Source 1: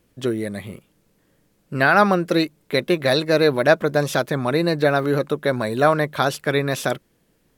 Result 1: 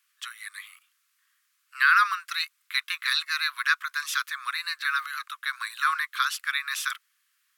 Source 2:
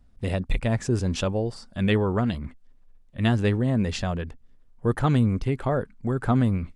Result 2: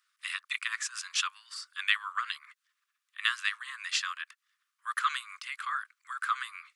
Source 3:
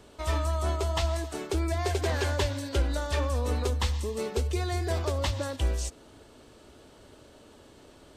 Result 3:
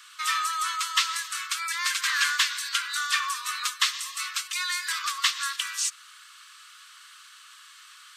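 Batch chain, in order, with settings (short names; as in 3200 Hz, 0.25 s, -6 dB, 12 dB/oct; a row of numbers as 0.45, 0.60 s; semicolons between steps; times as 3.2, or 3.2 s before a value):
steep high-pass 1100 Hz 96 dB/oct; normalise peaks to -9 dBFS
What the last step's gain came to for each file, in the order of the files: -1.0, +4.0, +11.5 dB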